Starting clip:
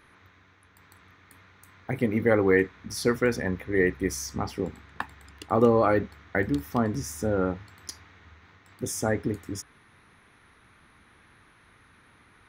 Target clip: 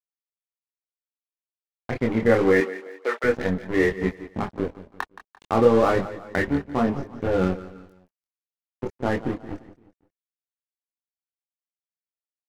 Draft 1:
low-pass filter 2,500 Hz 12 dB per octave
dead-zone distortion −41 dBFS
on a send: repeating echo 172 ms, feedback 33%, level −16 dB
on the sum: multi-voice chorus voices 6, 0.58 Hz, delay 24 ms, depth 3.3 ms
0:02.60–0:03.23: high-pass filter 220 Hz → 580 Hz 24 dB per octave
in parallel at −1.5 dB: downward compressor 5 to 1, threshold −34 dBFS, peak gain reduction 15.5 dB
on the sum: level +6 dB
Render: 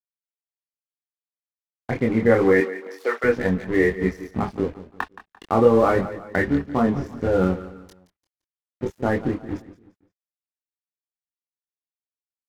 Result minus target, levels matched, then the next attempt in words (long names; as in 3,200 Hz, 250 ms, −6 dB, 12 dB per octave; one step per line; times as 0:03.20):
downward compressor: peak gain reduction −4.5 dB; dead-zone distortion: distortion −6 dB
low-pass filter 2,500 Hz 12 dB per octave
dead-zone distortion −33.5 dBFS
on a send: repeating echo 172 ms, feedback 33%, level −16 dB
on the sum: multi-voice chorus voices 6, 0.58 Hz, delay 24 ms, depth 3.3 ms
0:02.60–0:03.23: high-pass filter 220 Hz → 580 Hz 24 dB per octave
in parallel at −1.5 dB: downward compressor 5 to 1, threshold −40.5 dBFS, peak gain reduction 20 dB
on the sum: level +6 dB